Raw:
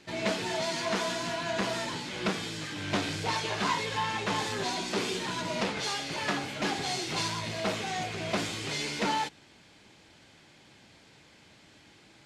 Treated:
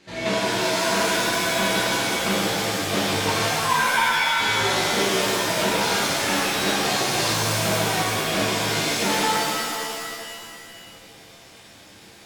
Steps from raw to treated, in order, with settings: 3.43–4.4 sine-wave speech; shimmer reverb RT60 2.2 s, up +7 st, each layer -2 dB, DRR -6.5 dB

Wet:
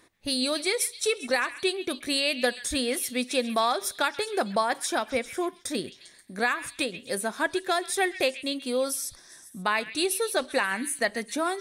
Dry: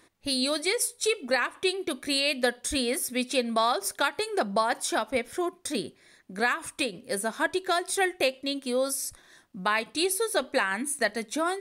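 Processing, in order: delay with a stepping band-pass 0.133 s, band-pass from 2500 Hz, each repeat 0.7 oct, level -10.5 dB

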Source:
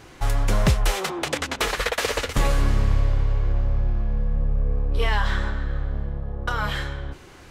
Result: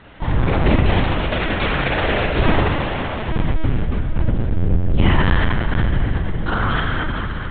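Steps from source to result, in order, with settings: 2.61–3.29 HPF 510 Hz 24 dB/oct; whisperiser; on a send: diffused feedback echo 0.471 s, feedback 58%, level -9.5 dB; on the sum: spring tank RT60 2.2 s, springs 35 ms, chirp 65 ms, DRR -3 dB; LPC vocoder at 8 kHz pitch kept; gain +1 dB

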